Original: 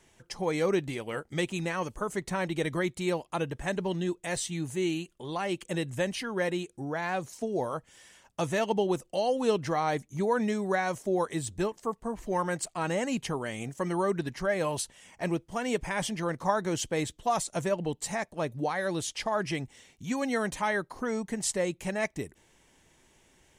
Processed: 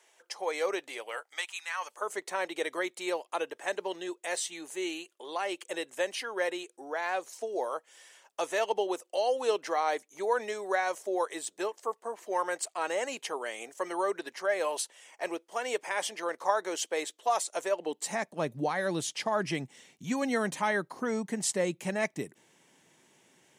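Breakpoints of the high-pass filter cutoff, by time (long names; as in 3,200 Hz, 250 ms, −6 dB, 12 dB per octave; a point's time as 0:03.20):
high-pass filter 24 dB per octave
0:01.01 470 Hz
0:01.64 1,200 Hz
0:02.09 400 Hz
0:17.75 400 Hz
0:18.38 140 Hz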